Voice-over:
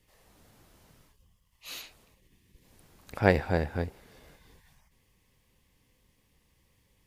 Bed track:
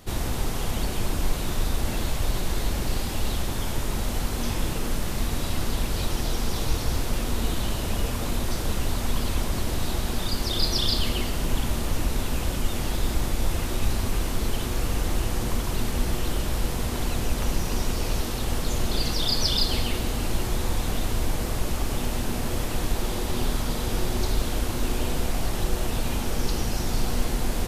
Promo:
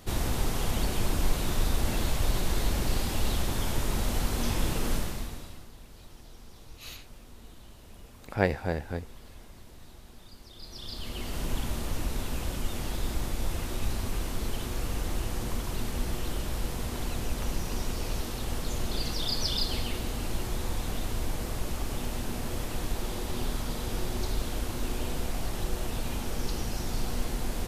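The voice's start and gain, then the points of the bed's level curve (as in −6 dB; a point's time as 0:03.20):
5.15 s, −3.0 dB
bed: 0:04.96 −1.5 dB
0:05.71 −23.5 dB
0:10.55 −23.5 dB
0:11.37 −6 dB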